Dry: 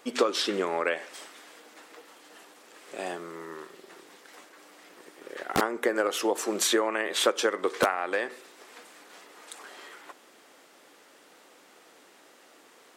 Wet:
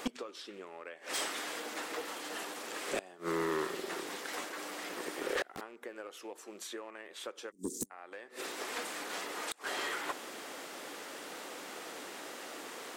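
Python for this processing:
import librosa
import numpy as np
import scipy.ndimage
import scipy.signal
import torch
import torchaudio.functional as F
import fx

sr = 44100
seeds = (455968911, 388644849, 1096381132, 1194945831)

y = fx.rattle_buzz(x, sr, strikes_db=-40.0, level_db=-30.0)
y = fx.ellip_bandstop(y, sr, low_hz=240.0, high_hz=6900.0, order=3, stop_db=50, at=(7.5, 7.9), fade=0.02)
y = fx.gate_flip(y, sr, shuts_db=-24.0, range_db=-30)
y = 10.0 ** (-38.0 / 20.0) * np.tanh(y / 10.0 ** (-38.0 / 20.0))
y = F.gain(torch.from_numpy(y), 11.0).numpy()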